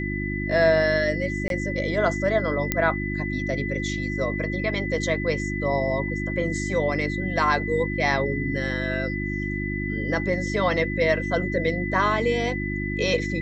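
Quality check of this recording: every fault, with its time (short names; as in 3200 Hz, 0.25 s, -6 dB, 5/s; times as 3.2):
hum 50 Hz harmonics 7 -29 dBFS
tone 2000 Hz -31 dBFS
1.48–1.5 gap 22 ms
2.72 pop -6 dBFS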